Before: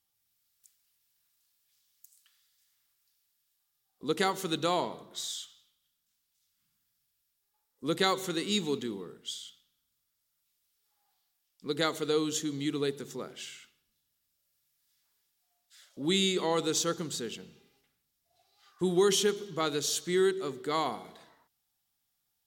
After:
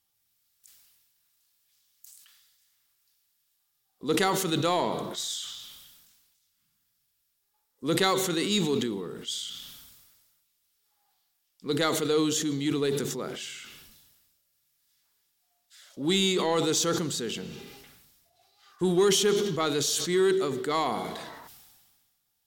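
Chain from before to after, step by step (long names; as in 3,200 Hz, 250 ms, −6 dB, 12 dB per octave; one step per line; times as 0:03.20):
in parallel at −6 dB: hard clipping −26.5 dBFS, distortion −10 dB
on the sum: level that may fall only so fast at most 36 dB per second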